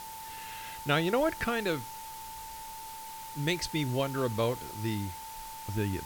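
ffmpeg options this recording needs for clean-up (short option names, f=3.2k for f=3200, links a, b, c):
-af "adeclick=t=4,bandreject=f=890:w=30,afwtdn=0.0045"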